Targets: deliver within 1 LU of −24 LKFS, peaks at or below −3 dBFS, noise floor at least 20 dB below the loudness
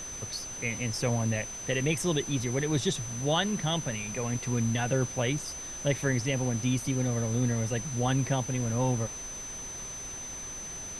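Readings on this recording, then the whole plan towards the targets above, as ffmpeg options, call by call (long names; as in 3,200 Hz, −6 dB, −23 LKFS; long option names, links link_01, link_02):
interfering tone 6,100 Hz; level of the tone −38 dBFS; background noise floor −40 dBFS; target noise floor −50 dBFS; integrated loudness −30.0 LKFS; sample peak −14.0 dBFS; target loudness −24.0 LKFS
→ -af "bandreject=frequency=6100:width=30"
-af "afftdn=noise_reduction=10:noise_floor=-40"
-af "volume=6dB"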